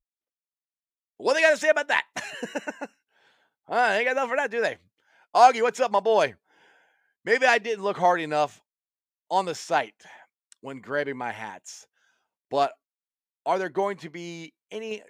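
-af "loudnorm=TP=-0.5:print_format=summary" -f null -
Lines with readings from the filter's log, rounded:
Input Integrated:    -24.8 LUFS
Input True Peak:      -4.3 dBTP
Input LRA:             7.4 LU
Input Threshold:     -36.6 LUFS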